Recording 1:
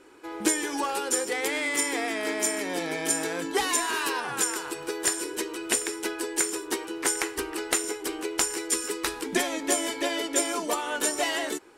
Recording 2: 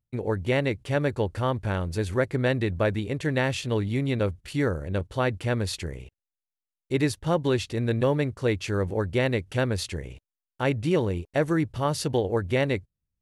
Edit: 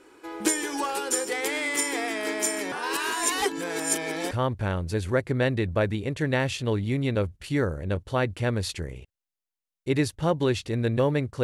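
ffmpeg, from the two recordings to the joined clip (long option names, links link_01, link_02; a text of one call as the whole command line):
ffmpeg -i cue0.wav -i cue1.wav -filter_complex "[0:a]apad=whole_dur=11.43,atrim=end=11.43,asplit=2[link_01][link_02];[link_01]atrim=end=2.722[link_03];[link_02]atrim=start=2.718:end=4.312,asetpts=PTS-STARTPTS,areverse[link_04];[1:a]atrim=start=1.348:end=8.47[link_05];[link_03][link_04]acrossfade=duration=0.004:curve1=hsin:curve2=hsin[link_06];[link_06][link_05]acrossfade=duration=0.004:curve1=hsin:curve2=hsin" out.wav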